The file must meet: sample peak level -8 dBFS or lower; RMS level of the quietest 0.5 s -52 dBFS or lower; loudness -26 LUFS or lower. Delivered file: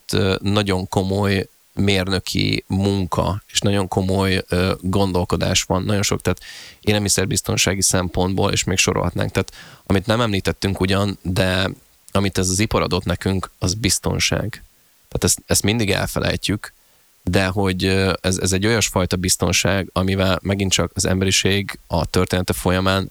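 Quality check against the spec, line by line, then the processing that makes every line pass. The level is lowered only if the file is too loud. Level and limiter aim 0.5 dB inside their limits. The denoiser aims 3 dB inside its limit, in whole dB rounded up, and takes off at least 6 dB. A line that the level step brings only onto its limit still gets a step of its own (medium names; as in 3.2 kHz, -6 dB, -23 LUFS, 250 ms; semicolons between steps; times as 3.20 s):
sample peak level -4.0 dBFS: fail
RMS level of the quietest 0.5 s -55 dBFS: pass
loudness -19.5 LUFS: fail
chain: trim -7 dB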